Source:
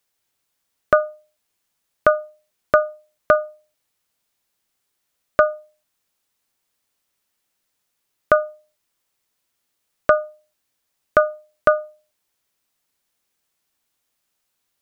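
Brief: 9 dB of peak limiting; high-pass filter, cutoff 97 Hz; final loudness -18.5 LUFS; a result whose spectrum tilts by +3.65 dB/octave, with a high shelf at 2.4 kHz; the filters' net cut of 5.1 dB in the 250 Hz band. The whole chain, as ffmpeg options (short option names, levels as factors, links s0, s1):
-af "highpass=97,equalizer=f=250:t=o:g=-7,highshelf=f=2400:g=-5.5,volume=2.82,alimiter=limit=0.708:level=0:latency=1"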